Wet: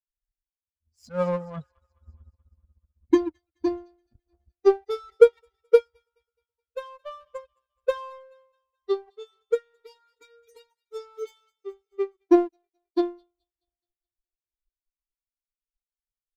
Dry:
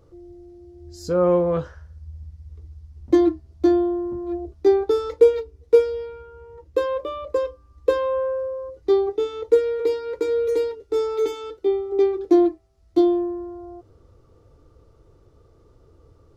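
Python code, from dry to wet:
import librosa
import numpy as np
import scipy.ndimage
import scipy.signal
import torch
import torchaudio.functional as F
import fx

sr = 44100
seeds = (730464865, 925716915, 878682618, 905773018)

y = fx.bin_expand(x, sr, power=3.0)
y = fx.echo_wet_highpass(y, sr, ms=212, feedback_pct=56, hz=1400.0, wet_db=-16)
y = fx.power_curve(y, sr, exponent=1.4)
y = F.gain(torch.from_numpy(y), 4.0).numpy()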